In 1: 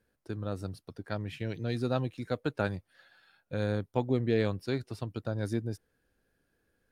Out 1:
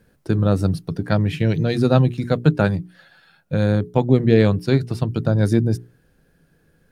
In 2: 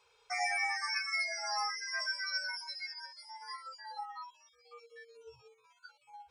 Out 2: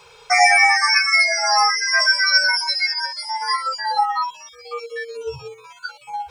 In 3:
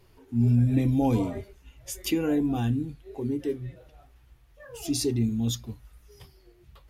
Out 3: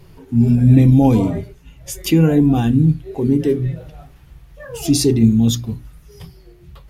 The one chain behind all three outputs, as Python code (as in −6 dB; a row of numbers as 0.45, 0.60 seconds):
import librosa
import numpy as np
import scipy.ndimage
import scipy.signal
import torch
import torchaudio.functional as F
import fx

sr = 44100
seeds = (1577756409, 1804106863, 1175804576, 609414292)

y = fx.peak_eq(x, sr, hz=160.0, db=13.5, octaves=0.3)
y = fx.hum_notches(y, sr, base_hz=60, count=7)
y = fx.rider(y, sr, range_db=3, speed_s=2.0)
y = fx.low_shelf(y, sr, hz=380.0, db=4.5)
y = librosa.util.normalize(y) * 10.0 ** (-1.5 / 20.0)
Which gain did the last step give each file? +11.0, +20.0, +9.0 decibels